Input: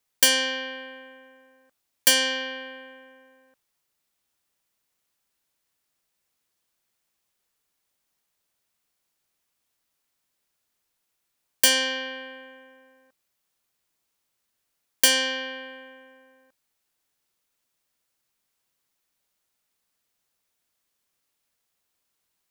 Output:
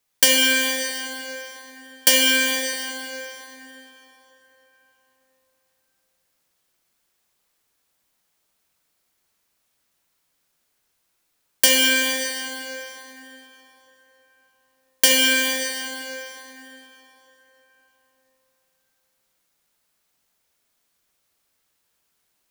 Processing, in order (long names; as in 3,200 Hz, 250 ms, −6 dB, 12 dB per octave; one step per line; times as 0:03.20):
dense smooth reverb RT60 3.9 s, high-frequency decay 0.7×, DRR −2 dB
level +2.5 dB